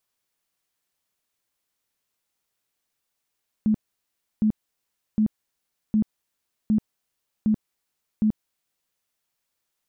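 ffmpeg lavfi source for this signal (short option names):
-f lavfi -i "aevalsrc='0.15*sin(2*PI*215*mod(t,0.76))*lt(mod(t,0.76),18/215)':d=5.32:s=44100"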